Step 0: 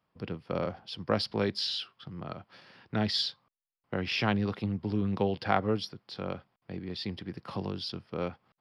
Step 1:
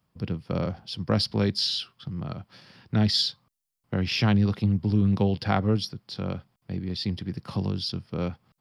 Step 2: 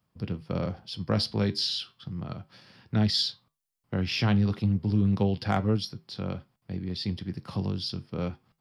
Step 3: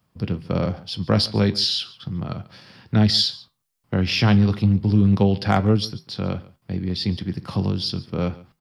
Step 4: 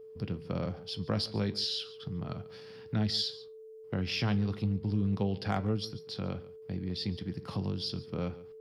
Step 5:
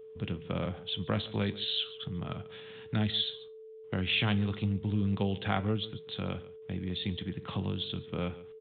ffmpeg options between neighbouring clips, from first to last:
-af "bass=f=250:g=11,treble=f=4k:g=10"
-af "asoftclip=type=hard:threshold=-11dB,flanger=delay=9.1:depth=2.3:regen=-76:speed=0.34:shape=sinusoidal,volume=2dB"
-af "aecho=1:1:141:0.0944,volume=7.5dB"
-af "acompressor=threshold=-29dB:ratio=1.5,aeval=exprs='val(0)+0.0112*sin(2*PI*440*n/s)':c=same,volume=-7.5dB"
-af "crystalizer=i=5:c=0,aresample=8000,aresample=44100"

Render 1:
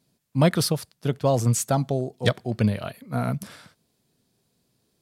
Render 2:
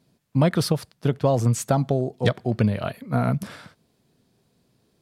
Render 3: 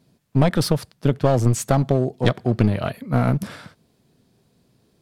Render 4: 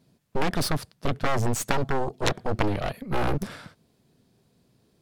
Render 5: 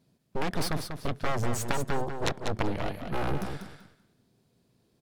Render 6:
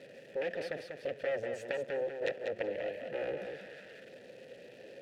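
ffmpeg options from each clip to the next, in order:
-af "highshelf=f=4.1k:g=-9,acompressor=threshold=-24dB:ratio=2.5,volume=6dB"
-af "lowshelf=f=370:g=2.5,aeval=exprs='clip(val(0),-1,0.0708)':c=same,volume=2.5dB"
-af "aeval=exprs='0.891*(cos(1*acos(clip(val(0)/0.891,-1,1)))-cos(1*PI/2))+0.316*(cos(6*acos(clip(val(0)/0.891,-1,1)))-cos(6*PI/2))':c=same,volume=-3dB"
-af "aecho=1:1:193|386|579:0.447|0.0893|0.0179,volume=-5dB"
-filter_complex "[0:a]aeval=exprs='val(0)+0.5*0.015*sgn(val(0))':c=same,asplit=3[a][b][c];[a]bandpass=f=530:t=q:w=8,volume=0dB[d];[b]bandpass=f=1.84k:t=q:w=8,volume=-6dB[e];[c]bandpass=f=2.48k:t=q:w=8,volume=-9dB[f];[d][e][f]amix=inputs=3:normalize=0,volume=5dB"

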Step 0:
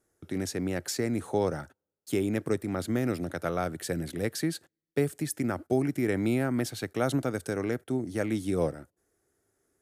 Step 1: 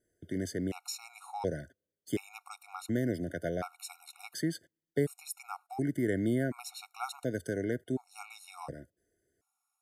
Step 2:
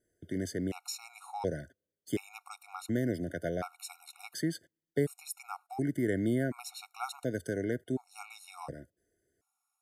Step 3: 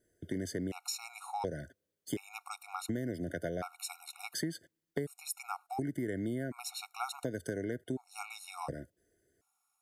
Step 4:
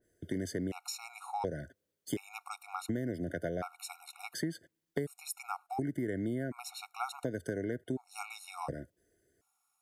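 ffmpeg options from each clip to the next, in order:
-af "afftfilt=real='re*gt(sin(2*PI*0.69*pts/sr)*(1-2*mod(floor(b*sr/1024/730),2)),0)':imag='im*gt(sin(2*PI*0.69*pts/sr)*(1-2*mod(floor(b*sr/1024/730),2)),0)':win_size=1024:overlap=0.75,volume=-2.5dB"
-af anull
-af "acompressor=threshold=-36dB:ratio=6,volume=3.5dB"
-af "adynamicequalizer=threshold=0.00141:dfrequency=2700:dqfactor=0.7:tfrequency=2700:tqfactor=0.7:attack=5:release=100:ratio=0.375:range=2.5:mode=cutabove:tftype=highshelf,volume=1dB"

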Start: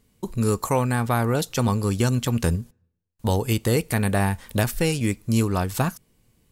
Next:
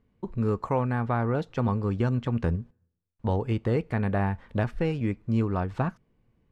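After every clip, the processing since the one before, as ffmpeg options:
-af "lowpass=1.8k,volume=-4dB"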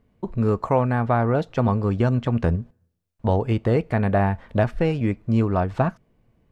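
-af "equalizer=f=650:w=4.2:g=6.5,volume=5dB"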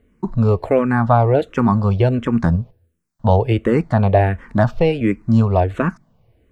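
-filter_complex "[0:a]asplit=2[a][b];[b]afreqshift=-1.4[c];[a][c]amix=inputs=2:normalize=1,volume=8dB"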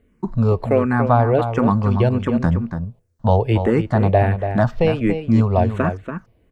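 -filter_complex "[0:a]asplit=2[a][b];[b]adelay=285.7,volume=-8dB,highshelf=f=4k:g=-6.43[c];[a][c]amix=inputs=2:normalize=0,volume=-1.5dB"

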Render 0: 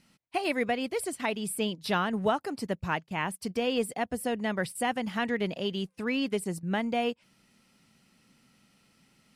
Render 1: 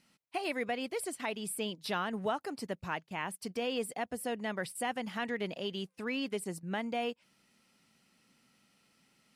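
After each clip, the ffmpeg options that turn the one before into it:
-filter_complex "[0:a]lowshelf=f=160:g=-9.5,asplit=2[a][b];[b]alimiter=level_in=1dB:limit=-24dB:level=0:latency=1,volume=-1dB,volume=-3dB[c];[a][c]amix=inputs=2:normalize=0,volume=-8dB"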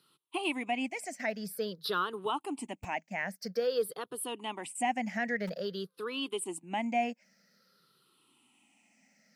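-filter_complex "[0:a]afftfilt=real='re*pow(10,18/40*sin(2*PI*(0.62*log(max(b,1)*sr/1024/100)/log(2)-(-0.5)*(pts-256)/sr)))':imag='im*pow(10,18/40*sin(2*PI*(0.62*log(max(b,1)*sr/1024/100)/log(2)-(-0.5)*(pts-256)/sr)))':win_size=1024:overlap=0.75,acrossover=split=140[a][b];[a]acrusher=bits=6:mix=0:aa=0.000001[c];[c][b]amix=inputs=2:normalize=0,volume=-2dB"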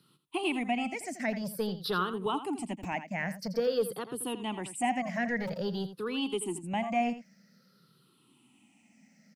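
-filter_complex "[0:a]acrossover=split=260[a][b];[a]aeval=exprs='0.0211*sin(PI/2*2.82*val(0)/0.0211)':c=same[c];[c][b]amix=inputs=2:normalize=0,aecho=1:1:84:0.251"

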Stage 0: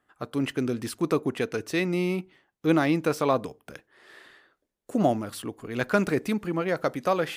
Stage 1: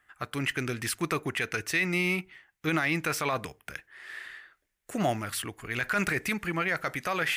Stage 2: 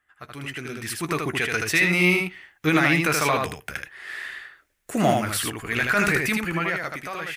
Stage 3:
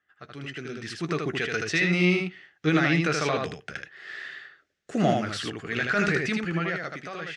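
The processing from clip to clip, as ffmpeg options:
-af "equalizer=f=125:t=o:w=1:g=-4,equalizer=f=250:t=o:w=1:g=-12,equalizer=f=500:t=o:w=1:g=-10,equalizer=f=1k:t=o:w=1:g=-5,equalizer=f=2k:t=o:w=1:g=7,equalizer=f=4k:t=o:w=1:g=-4,alimiter=limit=-24dB:level=0:latency=1:release=26,volume=6.5dB"
-af "dynaudnorm=f=250:g=9:m=12.5dB,aecho=1:1:13|78:0.299|0.668,volume=-6dB"
-af "highpass=100,equalizer=f=170:t=q:w=4:g=4,equalizer=f=420:t=q:w=4:g=3,equalizer=f=970:t=q:w=4:g=-10,equalizer=f=2.3k:t=q:w=4:g=-5,lowpass=f=6.1k:w=0.5412,lowpass=f=6.1k:w=1.3066,volume=-2.5dB"

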